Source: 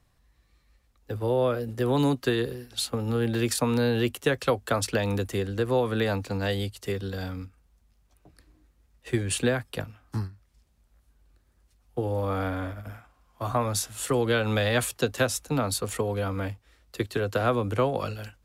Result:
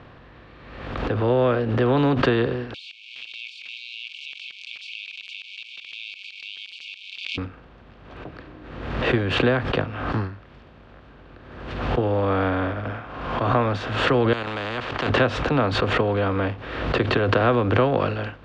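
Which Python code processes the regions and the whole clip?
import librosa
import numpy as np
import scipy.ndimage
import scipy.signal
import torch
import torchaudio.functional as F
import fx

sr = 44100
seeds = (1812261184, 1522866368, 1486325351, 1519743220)

y = fx.chain(x, sr, fx.zero_step(step_db=-26.5),
    fx.brickwall_highpass(low_hz=2200.0),
    fx.level_steps(step_db=20), at=(2.74, 7.38))
y = fx.chain(y, sr, fx.level_steps(step_db=9),
    fx.resample_bad(factor=4, down='filtered', up='hold'),
    fx.spectral_comp(ratio=4.0), at=(14.33, 15.1))
y = fx.bin_compress(y, sr, power=0.6)
y = scipy.signal.sosfilt(scipy.signal.butter(4, 3200.0, 'lowpass', fs=sr, output='sos'), y)
y = fx.pre_swell(y, sr, db_per_s=47.0)
y = F.gain(torch.from_numpy(y), 2.0).numpy()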